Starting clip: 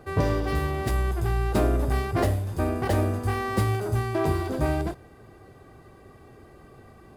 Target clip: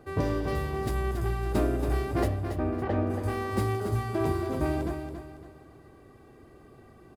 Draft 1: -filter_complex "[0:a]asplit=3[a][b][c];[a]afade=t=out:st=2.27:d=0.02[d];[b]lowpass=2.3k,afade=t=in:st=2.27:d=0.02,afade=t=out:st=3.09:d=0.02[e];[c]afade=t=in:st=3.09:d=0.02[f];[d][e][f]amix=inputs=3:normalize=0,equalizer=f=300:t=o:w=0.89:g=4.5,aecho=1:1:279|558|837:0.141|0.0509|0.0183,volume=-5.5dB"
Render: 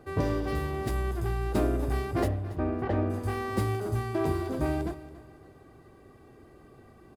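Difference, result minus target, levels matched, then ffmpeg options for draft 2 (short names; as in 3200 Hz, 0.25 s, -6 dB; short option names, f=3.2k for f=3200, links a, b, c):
echo-to-direct -9 dB
-filter_complex "[0:a]asplit=3[a][b][c];[a]afade=t=out:st=2.27:d=0.02[d];[b]lowpass=2.3k,afade=t=in:st=2.27:d=0.02,afade=t=out:st=3.09:d=0.02[e];[c]afade=t=in:st=3.09:d=0.02[f];[d][e][f]amix=inputs=3:normalize=0,equalizer=f=300:t=o:w=0.89:g=4.5,aecho=1:1:279|558|837|1116:0.398|0.143|0.0516|0.0186,volume=-5.5dB"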